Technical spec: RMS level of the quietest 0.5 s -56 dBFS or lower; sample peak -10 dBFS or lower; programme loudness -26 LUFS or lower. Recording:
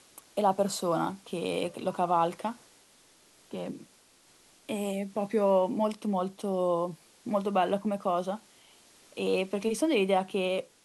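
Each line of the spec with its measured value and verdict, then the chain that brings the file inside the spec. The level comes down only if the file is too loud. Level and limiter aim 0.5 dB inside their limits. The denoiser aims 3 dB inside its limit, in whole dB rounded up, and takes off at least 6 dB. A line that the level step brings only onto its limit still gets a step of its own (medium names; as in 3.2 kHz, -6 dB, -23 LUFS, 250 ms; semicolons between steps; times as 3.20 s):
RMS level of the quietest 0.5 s -61 dBFS: pass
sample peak -12.5 dBFS: pass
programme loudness -30.0 LUFS: pass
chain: none needed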